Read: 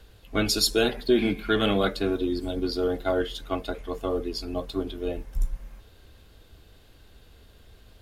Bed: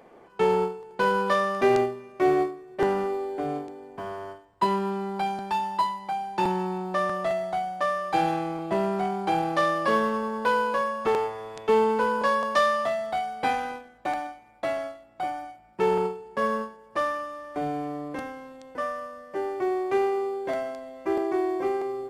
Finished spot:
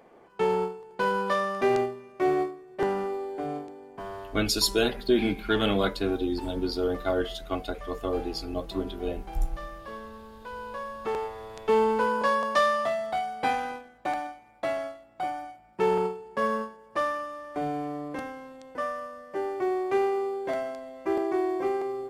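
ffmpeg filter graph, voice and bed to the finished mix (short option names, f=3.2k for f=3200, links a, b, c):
-filter_complex "[0:a]adelay=4000,volume=-1.5dB[a];[1:a]volume=13.5dB,afade=t=out:st=4.21:d=0.34:silence=0.188365,afade=t=in:st=10.49:d=1.36:silence=0.149624[b];[a][b]amix=inputs=2:normalize=0"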